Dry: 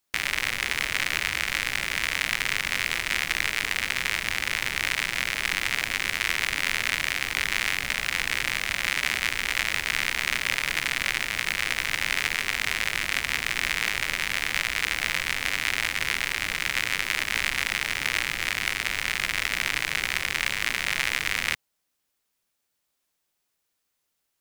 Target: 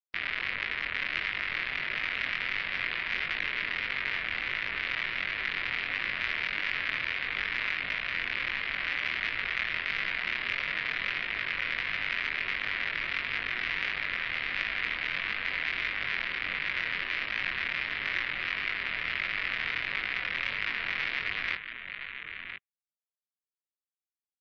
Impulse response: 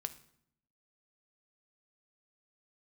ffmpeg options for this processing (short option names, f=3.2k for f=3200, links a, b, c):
-filter_complex "[0:a]acrossover=split=480|1600[a][b][c];[b]alimiter=level_in=2.5dB:limit=-24dB:level=0:latency=1,volume=-2.5dB[d];[a][d][c]amix=inputs=3:normalize=0,lowpass=2.6k,aecho=1:1:1014:0.398,flanger=delay=19.5:depth=6:speed=1.5,afftdn=nr=30:nf=-52,acontrast=56,lowshelf=f=340:g=-8,bandreject=f=840:w=12,volume=-5dB"